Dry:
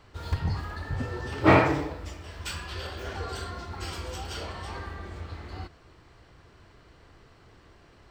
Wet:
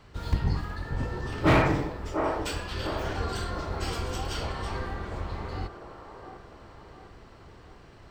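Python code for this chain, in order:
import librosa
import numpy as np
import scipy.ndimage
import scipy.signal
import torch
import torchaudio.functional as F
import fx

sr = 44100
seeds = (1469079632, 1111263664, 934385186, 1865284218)

p1 = fx.octave_divider(x, sr, octaves=1, level_db=0.0)
p2 = fx.rider(p1, sr, range_db=4, speed_s=2.0)
p3 = np.clip(10.0 ** (13.5 / 20.0) * p2, -1.0, 1.0) / 10.0 ** (13.5 / 20.0)
p4 = p3 + fx.echo_wet_bandpass(p3, sr, ms=701, feedback_pct=47, hz=650.0, wet_db=-4.0, dry=0)
y = p4 * 10.0 ** (-2.0 / 20.0)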